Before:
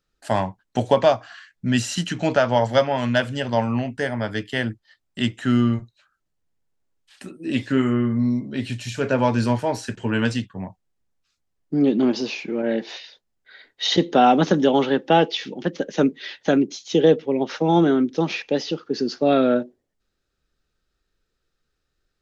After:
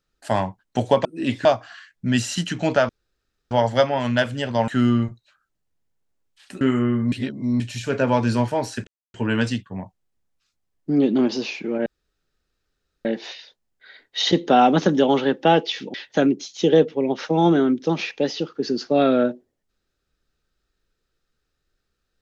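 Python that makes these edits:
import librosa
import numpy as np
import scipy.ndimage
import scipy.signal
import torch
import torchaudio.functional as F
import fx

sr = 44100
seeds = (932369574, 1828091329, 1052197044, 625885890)

y = fx.edit(x, sr, fx.insert_room_tone(at_s=2.49, length_s=0.62),
    fx.cut(start_s=3.66, length_s=1.73),
    fx.move(start_s=7.32, length_s=0.4, to_s=1.05),
    fx.reverse_span(start_s=8.23, length_s=0.48),
    fx.insert_silence(at_s=9.98, length_s=0.27),
    fx.insert_room_tone(at_s=12.7, length_s=1.19),
    fx.cut(start_s=15.59, length_s=0.66), tone=tone)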